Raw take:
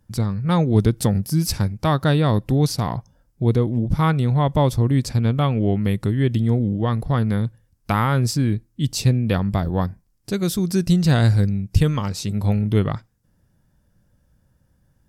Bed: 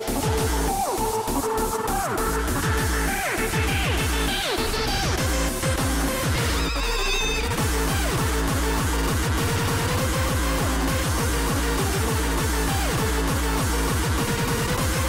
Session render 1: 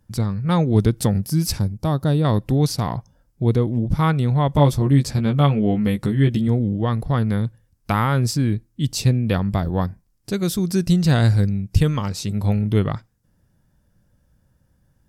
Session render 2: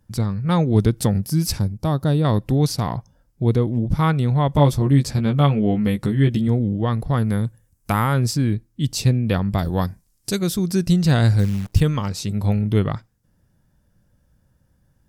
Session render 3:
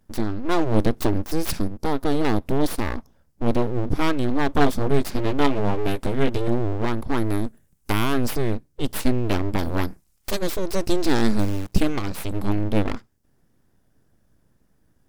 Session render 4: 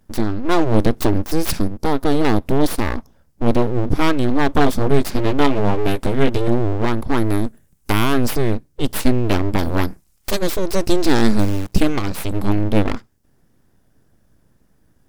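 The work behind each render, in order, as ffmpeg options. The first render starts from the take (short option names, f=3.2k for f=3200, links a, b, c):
-filter_complex "[0:a]asettb=1/sr,asplit=3[a][b][c];[a]atrim=end=1.594[d];[b]atrim=start=1.59:end=2.25,asetpts=PTS-STARTPTS,afade=t=in:d=0.004:c=qsin,afade=t=out:st=0.656:d=0.004:c=qsin,equalizer=f=2k:t=o:w=2.3:g=-11.5[e];[c]atrim=start=2.246[f];[d][e]acrossfade=d=0.004:c1=hsin:c2=qsin[g];[g][f]acrossfade=d=0.004:c1=qsin:c2=hsin,asettb=1/sr,asplit=3[h][i][j];[h]atrim=end=4.534[k];[i]atrim=start=4.53:end=6.48,asetpts=PTS-STARTPTS,afade=t=in:d=0.004:c=qsin,afade=t=out:st=1.946:d=0.004:c=qsin,asplit=2[l][m];[m]adelay=14,volume=-4dB[n];[l][n]amix=inputs=2:normalize=0,atrim=end_sample=85995[o];[j]atrim=start=6.476[p];[k][o]acrossfade=d=0.004:c1=hsin:c2=qsin[q];[q][p]acrossfade=d=0.004:c1=qsin:c2=hsin"
-filter_complex "[0:a]asettb=1/sr,asplit=3[a][b][c];[a]atrim=end=7.134[d];[b]atrim=start=7.13:end=8.14,asetpts=PTS-STARTPTS,afade=t=in:d=0.004:c=qsin,afade=t=out:st=1.006:d=0.004:c=qsin,highshelf=f=5.9k:t=q:w=1.5:g=6.5[e];[c]atrim=start=8.136[f];[d][e]acrossfade=d=0.004:c1=hsin:c2=qsin[g];[g][f]acrossfade=d=0.004:c1=qsin:c2=hsin,asettb=1/sr,asplit=3[h][i][j];[h]atrim=end=9.584[k];[i]atrim=start=9.58:end=10.39,asetpts=PTS-STARTPTS,afade=t=in:d=0.004:c=qsin,afade=t=out:st=0.806:d=0.004:c=qsin,equalizer=f=9.4k:t=o:w=2.3:g=12.5[l];[j]atrim=start=10.386[m];[k][l]acrossfade=d=0.004:c1=hsin:c2=qsin[n];[n][m]acrossfade=d=0.004:c1=qsin:c2=hsin,asettb=1/sr,asplit=3[o][p][q];[o]atrim=end=11.394[r];[p]atrim=start=11.39:end=11.8,asetpts=PTS-STARTPTS,afade=t=in:d=0.004:c=qsin,afade=t=out:st=0.406:d=0.004:c=qsin,acrusher=bits=7:dc=4:mix=0:aa=0.000001[s];[q]atrim=start=11.796[t];[r][s]acrossfade=d=0.004:c1=hsin:c2=qsin[u];[u][t]acrossfade=d=0.004:c1=qsin:c2=hsin"
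-af "aeval=exprs='abs(val(0))':c=same"
-af "volume=5dB,alimiter=limit=-1dB:level=0:latency=1"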